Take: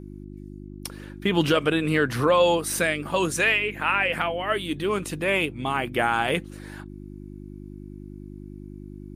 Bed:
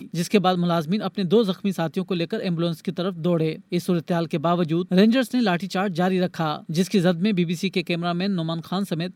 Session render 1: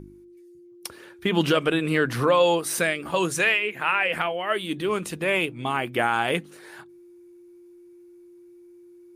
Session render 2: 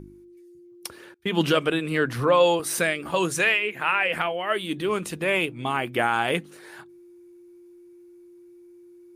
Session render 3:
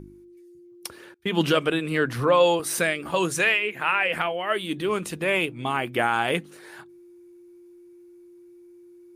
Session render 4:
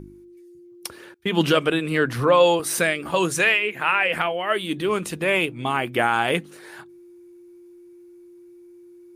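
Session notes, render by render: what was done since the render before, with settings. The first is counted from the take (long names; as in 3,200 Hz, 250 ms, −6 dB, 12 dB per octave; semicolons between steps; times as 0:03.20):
hum removal 50 Hz, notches 6
0:01.14–0:02.60: multiband upward and downward expander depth 70%
no processing that can be heard
level +2.5 dB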